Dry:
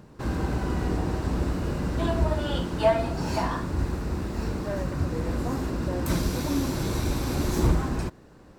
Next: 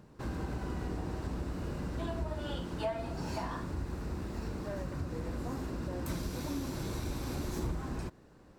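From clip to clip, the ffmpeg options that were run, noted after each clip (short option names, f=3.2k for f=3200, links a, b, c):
-af "acompressor=threshold=-27dB:ratio=2.5,volume=-7dB"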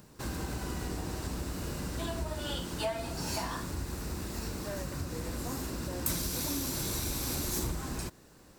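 -af "crystalizer=i=4.5:c=0"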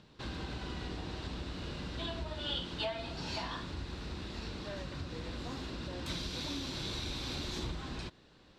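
-af "lowpass=f=3.6k:t=q:w=2.9,volume=-4.5dB"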